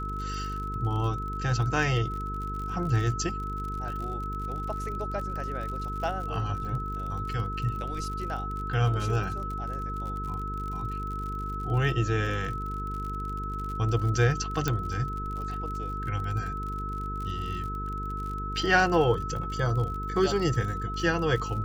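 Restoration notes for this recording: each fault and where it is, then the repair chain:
buzz 50 Hz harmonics 9 -35 dBFS
crackle 52/s -35 dBFS
tone 1300 Hz -34 dBFS
14.68 pop -12 dBFS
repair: de-click; de-hum 50 Hz, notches 9; notch 1300 Hz, Q 30

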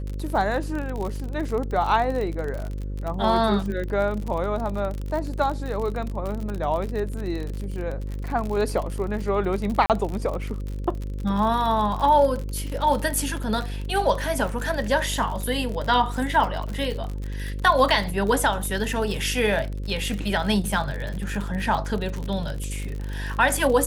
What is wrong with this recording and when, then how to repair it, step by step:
buzz 50 Hz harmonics 11 -30 dBFS
crackle 50/s -28 dBFS
9.86–9.9 gap 38 ms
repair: de-click; de-hum 50 Hz, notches 11; interpolate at 9.86, 38 ms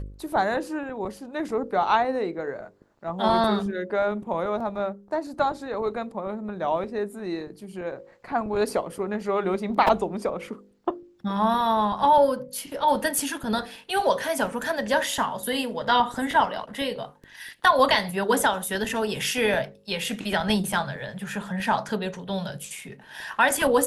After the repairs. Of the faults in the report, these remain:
none

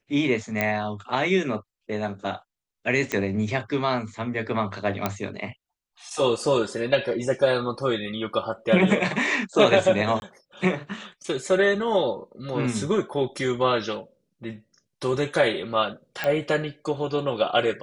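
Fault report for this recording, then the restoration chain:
0.61 pop -9 dBFS
3.12 pop -11 dBFS
5.06 pop -9 dBFS
10.2–10.22 gap 21 ms
16.24 pop -13 dBFS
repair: de-click; interpolate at 10.2, 21 ms

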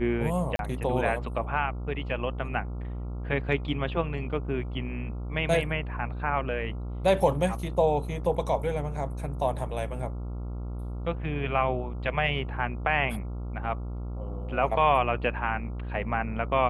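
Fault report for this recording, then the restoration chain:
buzz 60 Hz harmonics 23 -34 dBFS
0.56–0.59 gap 32 ms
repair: de-hum 60 Hz, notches 23; interpolate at 0.56, 32 ms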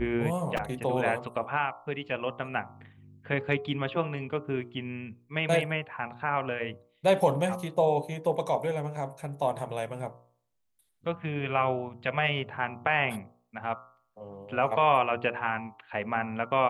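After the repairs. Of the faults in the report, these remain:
none

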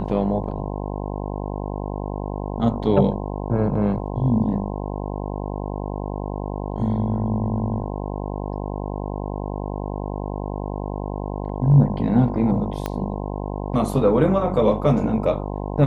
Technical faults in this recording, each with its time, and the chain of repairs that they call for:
buzz 50 Hz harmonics 21 -28 dBFS
12.86 pop -11 dBFS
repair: de-click; de-hum 50 Hz, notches 21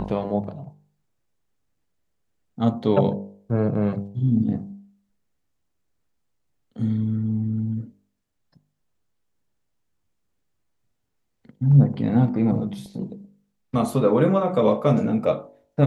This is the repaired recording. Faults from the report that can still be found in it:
12.86 pop

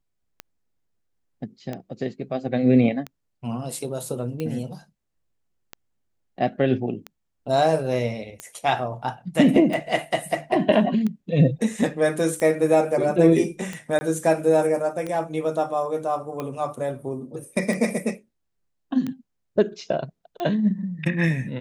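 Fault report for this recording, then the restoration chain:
tick 45 rpm -17 dBFS
13.99–14.01 gap 20 ms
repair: de-click; interpolate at 13.99, 20 ms

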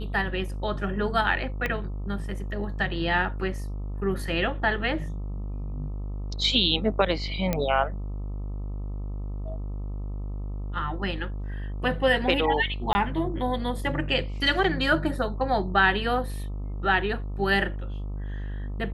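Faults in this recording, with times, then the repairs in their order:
buzz 50 Hz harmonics 26 -32 dBFS
1.66 pop -15 dBFS
7.53 pop -11 dBFS
12.93–12.95 gap 20 ms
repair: de-click; de-hum 50 Hz, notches 26; interpolate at 12.93, 20 ms

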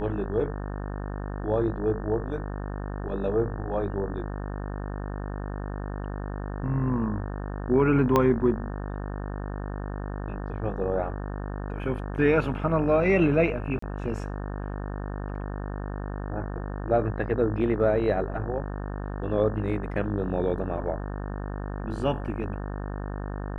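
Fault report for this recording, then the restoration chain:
buzz 50 Hz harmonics 36 -33 dBFS
8.16 pop -9 dBFS
13.79–13.82 gap 34 ms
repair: de-click; de-hum 50 Hz, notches 36; interpolate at 13.79, 34 ms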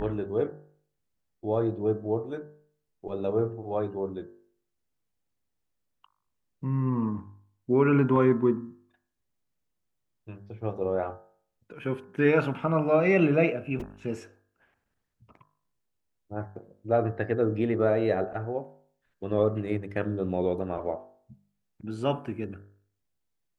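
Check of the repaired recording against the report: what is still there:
8.16 pop

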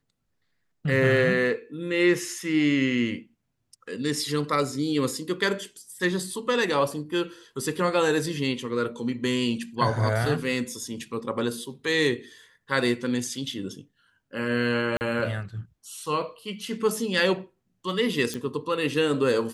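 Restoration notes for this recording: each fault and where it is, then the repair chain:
14.97–15.01 gap 39 ms
18.34 pop -16 dBFS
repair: de-click; interpolate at 14.97, 39 ms

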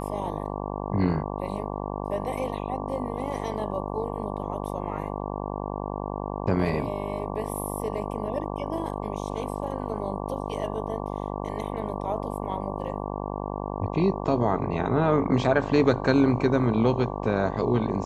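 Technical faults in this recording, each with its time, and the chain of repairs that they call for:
buzz 50 Hz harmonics 23 -32 dBFS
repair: de-hum 50 Hz, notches 23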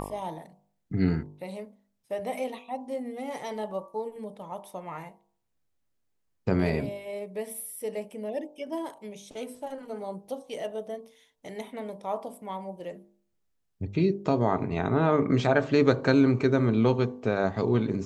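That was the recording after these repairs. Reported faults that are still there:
none

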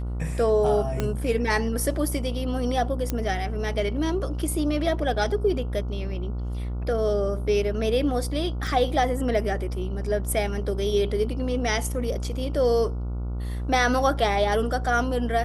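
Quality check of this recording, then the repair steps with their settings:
buzz 60 Hz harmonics 24 -29 dBFS
1 pop -12 dBFS
3.1 pop -12 dBFS
8.67 gap 2.1 ms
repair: de-click; de-hum 60 Hz, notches 24; interpolate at 8.67, 2.1 ms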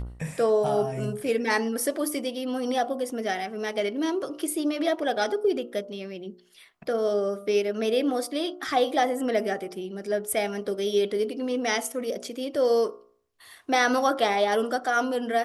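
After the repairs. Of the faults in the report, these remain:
1 pop

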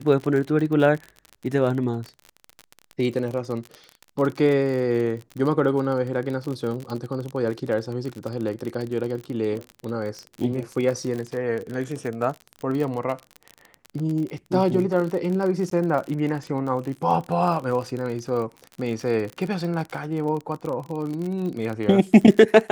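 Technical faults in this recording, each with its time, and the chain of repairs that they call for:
crackle 38/s -28 dBFS
15.7–15.71 gap 13 ms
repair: de-click; interpolate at 15.7, 13 ms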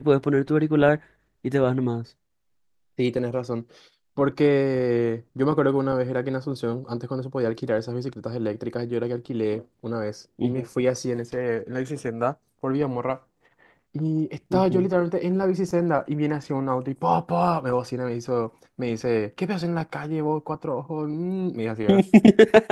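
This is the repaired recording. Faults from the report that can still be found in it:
none

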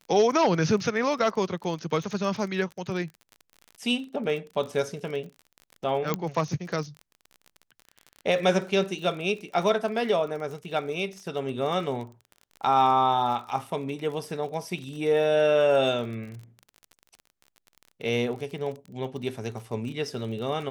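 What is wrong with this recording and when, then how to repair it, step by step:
crackle 35/s -35 dBFS
6.14 pop -12 dBFS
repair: de-click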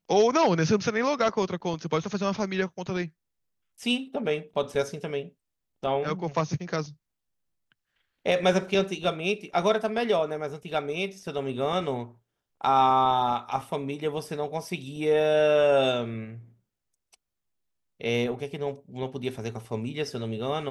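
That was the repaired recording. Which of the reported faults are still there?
none

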